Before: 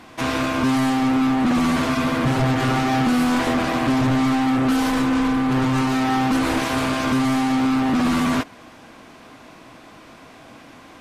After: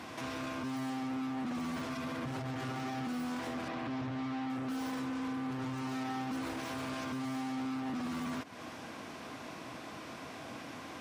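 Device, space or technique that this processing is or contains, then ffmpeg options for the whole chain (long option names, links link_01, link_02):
broadcast voice chain: -filter_complex "[0:a]asettb=1/sr,asplit=3[link_01][link_02][link_03];[link_01]atrim=end=3.684[link_04];[link_02]atrim=start=3.68:end=4.5,asetpts=PTS-STARTPTS,afade=type=in:duration=0.004:curve=qsin,afade=type=out:start_time=0.816:duration=0.004:curve=qsin,acrossover=split=5100[link_05][link_06];[link_06]acompressor=threshold=-56dB:ratio=4:attack=1:release=60[link_07];[link_05][link_07]amix=inputs=2:normalize=0[link_08];[link_03]atrim=start=4.496[link_09];[link_04][link_08]acrossfade=duration=0.004:curve1=hsin:curve2=qsin[link_10];[link_10][link_09]acrossfade=duration=0.004:curve1=qsin:curve2=hsin,highpass=frequency=70:width=0.5412,highpass=frequency=70:width=1.3066,deesser=0.6,acompressor=threshold=-29dB:ratio=4,equalizer=frequency=5500:width_type=o:width=0.28:gain=3,alimiter=level_in=5dB:limit=-24dB:level=0:latency=1:release=74,volume=-5dB,volume=-1.5dB"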